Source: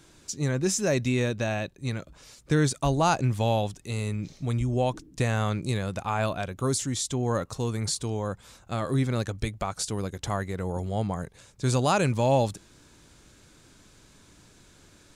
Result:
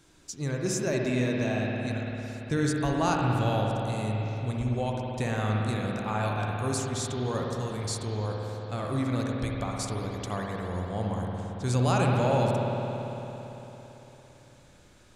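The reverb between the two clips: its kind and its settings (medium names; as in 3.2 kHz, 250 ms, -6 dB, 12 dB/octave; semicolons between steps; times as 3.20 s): spring tank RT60 3.8 s, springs 56 ms, chirp 50 ms, DRR -1.5 dB; trim -5 dB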